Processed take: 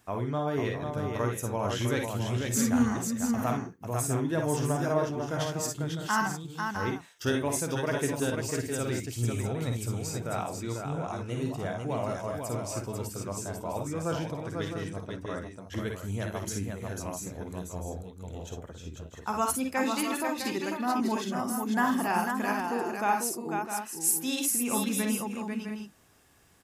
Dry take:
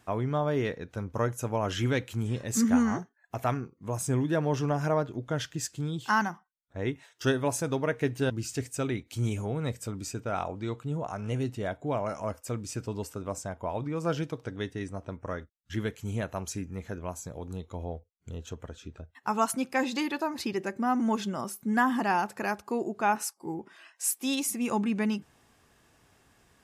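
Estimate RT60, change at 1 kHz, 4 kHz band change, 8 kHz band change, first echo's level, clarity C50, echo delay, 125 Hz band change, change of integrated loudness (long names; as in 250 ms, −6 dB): no reverb audible, 0.0 dB, +1.0 dB, +4.0 dB, −6.5 dB, no reverb audible, 50 ms, 0.0 dB, +0.5 dB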